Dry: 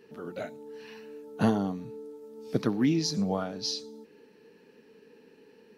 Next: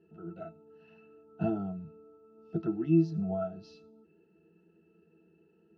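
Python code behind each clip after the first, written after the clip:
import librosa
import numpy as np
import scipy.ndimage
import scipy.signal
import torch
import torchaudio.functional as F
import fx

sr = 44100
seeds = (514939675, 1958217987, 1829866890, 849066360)

y = fx.octave_resonator(x, sr, note='E', decay_s=0.14)
y = y * 10.0 ** (5.5 / 20.0)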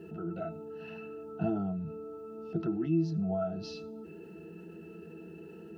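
y = fx.env_flatten(x, sr, amount_pct=50)
y = y * 10.0 ** (-5.0 / 20.0)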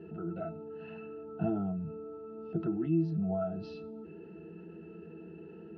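y = fx.air_absorb(x, sr, metres=290.0)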